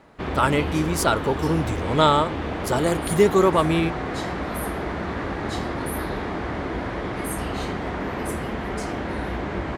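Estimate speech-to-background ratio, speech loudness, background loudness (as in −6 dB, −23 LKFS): 6.5 dB, −22.0 LKFS, −28.5 LKFS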